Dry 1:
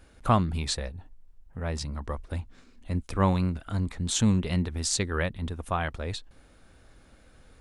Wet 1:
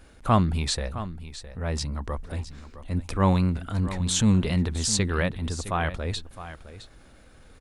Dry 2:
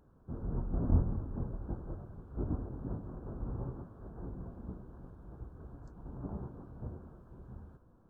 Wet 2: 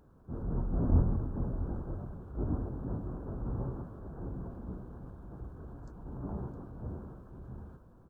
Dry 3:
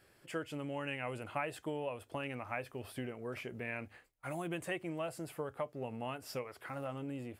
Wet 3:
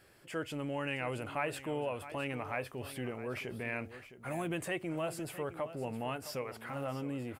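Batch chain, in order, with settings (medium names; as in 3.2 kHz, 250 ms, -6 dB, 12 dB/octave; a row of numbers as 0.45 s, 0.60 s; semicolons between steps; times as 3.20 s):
transient shaper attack -4 dB, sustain +2 dB; on a send: delay 662 ms -13.5 dB; on the sum: trim +3.5 dB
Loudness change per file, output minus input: +3.0 LU, +3.0 LU, +3.0 LU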